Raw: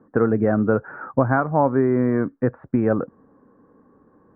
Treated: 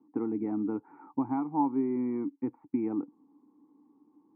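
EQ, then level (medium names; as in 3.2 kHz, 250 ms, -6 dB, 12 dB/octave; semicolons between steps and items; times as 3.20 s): vowel filter u; high-pass 76 Hz; 0.0 dB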